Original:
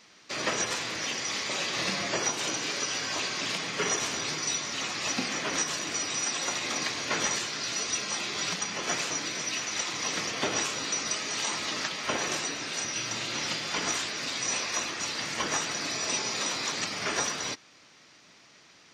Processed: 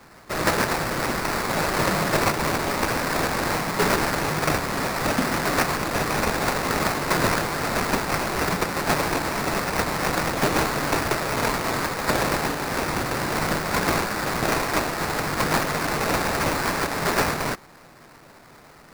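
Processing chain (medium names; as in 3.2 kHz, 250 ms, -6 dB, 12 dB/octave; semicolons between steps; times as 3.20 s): peaking EQ 150 Hz +8 dB 0.42 oct; sample-rate reducer 3.2 kHz, jitter 20%; trim +7.5 dB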